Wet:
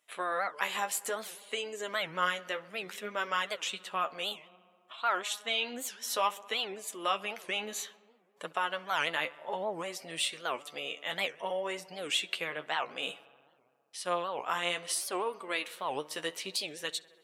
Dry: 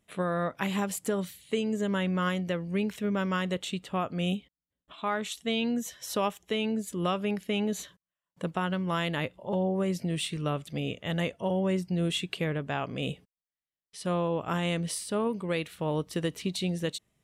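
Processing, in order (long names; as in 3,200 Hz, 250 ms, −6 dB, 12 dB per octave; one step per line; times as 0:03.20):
high-pass filter 750 Hz 12 dB per octave
on a send: feedback echo with a low-pass in the loop 66 ms, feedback 83%, low-pass 3,900 Hz, level −22 dB
on the sum: flanger 0.59 Hz, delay 6.3 ms, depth 7.6 ms, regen +31%
wow of a warped record 78 rpm, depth 250 cents
level +6 dB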